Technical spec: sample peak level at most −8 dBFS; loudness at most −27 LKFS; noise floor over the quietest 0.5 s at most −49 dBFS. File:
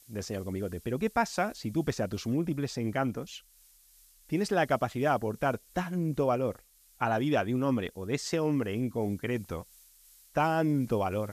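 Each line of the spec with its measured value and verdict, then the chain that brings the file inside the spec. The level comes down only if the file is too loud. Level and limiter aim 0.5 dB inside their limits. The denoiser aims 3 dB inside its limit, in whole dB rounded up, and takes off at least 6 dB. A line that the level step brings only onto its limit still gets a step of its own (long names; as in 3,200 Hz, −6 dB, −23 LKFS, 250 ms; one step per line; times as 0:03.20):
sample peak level −13.5 dBFS: in spec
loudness −31.0 LKFS: in spec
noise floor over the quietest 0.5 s −61 dBFS: in spec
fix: no processing needed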